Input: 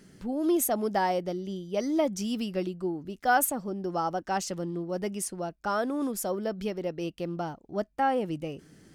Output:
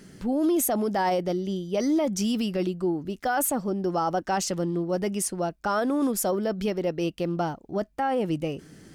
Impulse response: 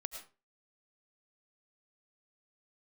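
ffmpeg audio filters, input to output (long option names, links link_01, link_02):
-af "alimiter=limit=-23.5dB:level=0:latency=1:release=12,volume=6dB"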